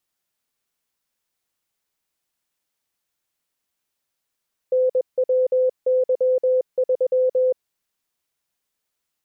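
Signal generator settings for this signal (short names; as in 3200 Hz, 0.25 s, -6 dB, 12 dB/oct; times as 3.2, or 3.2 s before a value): Morse "NWY3" 21 wpm 511 Hz -15 dBFS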